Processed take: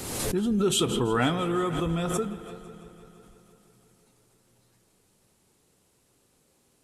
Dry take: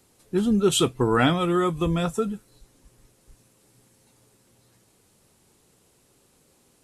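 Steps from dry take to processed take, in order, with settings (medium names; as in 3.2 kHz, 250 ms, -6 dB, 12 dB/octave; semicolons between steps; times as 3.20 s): on a send: multi-head delay 167 ms, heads all three, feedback 51%, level -21 dB; on the sum: spring tank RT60 3 s, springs 38/42/47 ms, chirp 80 ms, DRR 14.5 dB; swell ahead of each attack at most 38 dB/s; trim -5 dB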